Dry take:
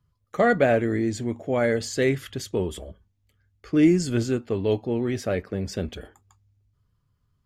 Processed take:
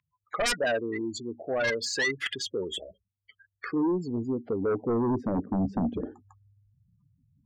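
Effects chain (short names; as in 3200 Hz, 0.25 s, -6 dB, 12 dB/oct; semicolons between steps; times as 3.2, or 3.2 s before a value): spectral gate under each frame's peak -15 dB strong; band-pass sweep 2200 Hz -> 270 Hz, 3.45–5.39; in parallel at -0.5 dB: compressor, threshold -40 dBFS, peak gain reduction 15 dB; on the sum: spectral gain 4.12–5.94, 310–9400 Hz -8 dB; sine folder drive 14 dB, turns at -16.5 dBFS; mismatched tape noise reduction encoder only; gain -6 dB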